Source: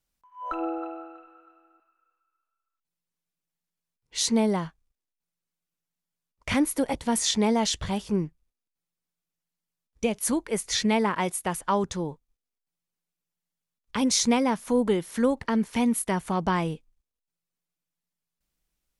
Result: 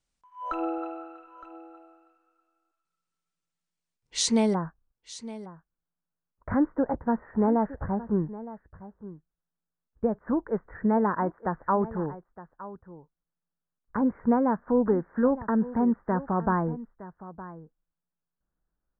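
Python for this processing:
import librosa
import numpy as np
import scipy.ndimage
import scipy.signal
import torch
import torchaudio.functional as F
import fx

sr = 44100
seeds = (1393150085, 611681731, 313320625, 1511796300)

y = fx.steep_lowpass(x, sr, hz=fx.steps((0.0, 9600.0), (4.53, 1700.0)), slope=72)
y = y + 10.0 ** (-16.0 / 20.0) * np.pad(y, (int(914 * sr / 1000.0), 0))[:len(y)]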